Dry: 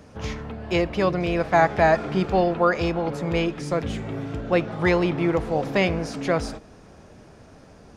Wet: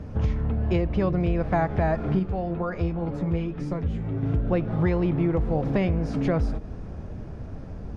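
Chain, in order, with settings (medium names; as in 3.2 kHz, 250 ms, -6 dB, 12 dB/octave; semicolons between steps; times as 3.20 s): RIAA curve playback; compression 4:1, threshold -23 dBFS, peak gain reduction 12 dB; 2.19–4.23 s: flange 2 Hz, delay 9.9 ms, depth 3.1 ms, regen +36%; trim +1.5 dB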